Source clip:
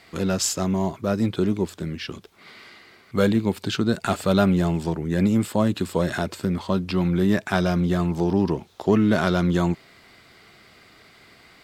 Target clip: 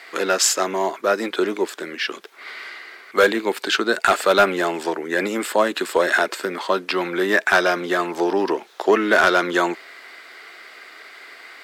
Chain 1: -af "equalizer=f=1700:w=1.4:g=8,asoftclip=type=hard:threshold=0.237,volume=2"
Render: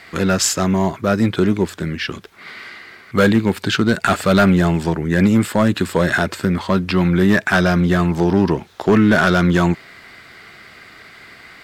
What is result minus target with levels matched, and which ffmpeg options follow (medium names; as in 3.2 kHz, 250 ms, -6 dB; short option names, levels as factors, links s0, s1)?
250 Hz band +7.0 dB
-af "highpass=f=350:w=0.5412,highpass=f=350:w=1.3066,equalizer=f=1700:w=1.4:g=8,asoftclip=type=hard:threshold=0.237,volume=2"